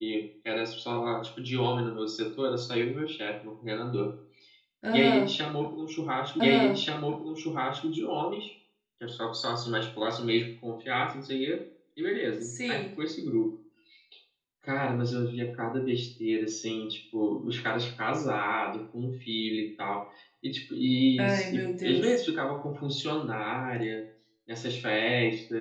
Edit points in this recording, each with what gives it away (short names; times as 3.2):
6.4 repeat of the last 1.48 s